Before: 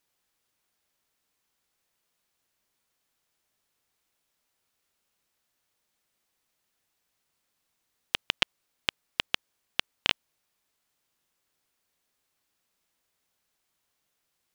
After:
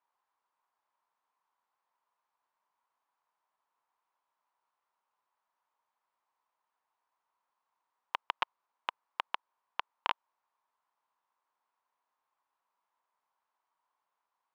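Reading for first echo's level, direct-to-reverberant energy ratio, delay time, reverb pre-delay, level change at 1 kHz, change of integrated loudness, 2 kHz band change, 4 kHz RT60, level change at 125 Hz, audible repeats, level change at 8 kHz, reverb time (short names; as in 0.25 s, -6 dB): none, none, none, none, +5.0 dB, -8.5 dB, -9.0 dB, none, under -20 dB, none, under -20 dB, none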